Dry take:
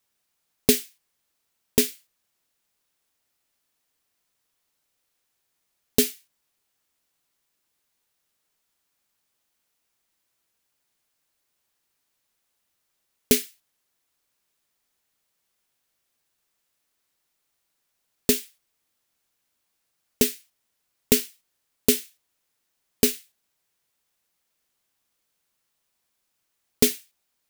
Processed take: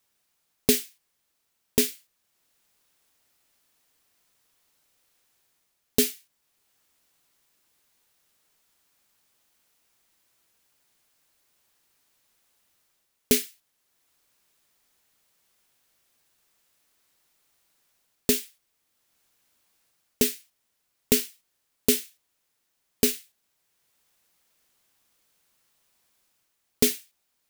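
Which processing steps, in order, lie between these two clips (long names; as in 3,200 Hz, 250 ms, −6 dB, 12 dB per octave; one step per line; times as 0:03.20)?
in parallel at +1 dB: brickwall limiter −11 dBFS, peak gain reduction 8.5 dB
on the sum: automatic gain control gain up to 4 dB
level −4 dB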